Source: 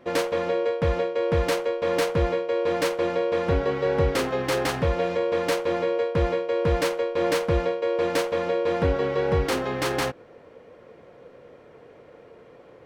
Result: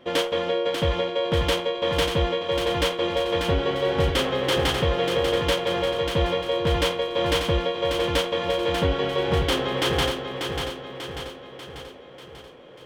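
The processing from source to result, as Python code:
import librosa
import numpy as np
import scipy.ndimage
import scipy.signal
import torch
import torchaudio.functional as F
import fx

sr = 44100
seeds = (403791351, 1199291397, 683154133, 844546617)

p1 = fx.peak_eq(x, sr, hz=3200.0, db=14.5, octaves=0.27)
y = p1 + fx.echo_feedback(p1, sr, ms=591, feedback_pct=53, wet_db=-6.0, dry=0)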